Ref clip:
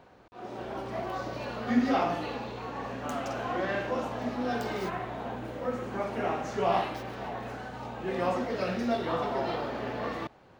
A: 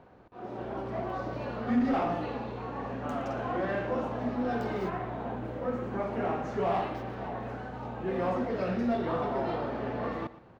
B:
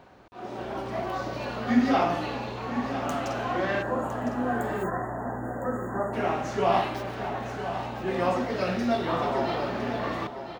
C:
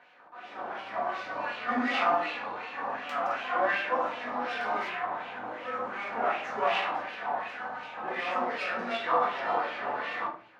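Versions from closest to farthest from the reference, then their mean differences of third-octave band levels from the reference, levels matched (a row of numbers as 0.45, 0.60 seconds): B, A, C; 2.0, 4.0, 8.0 decibels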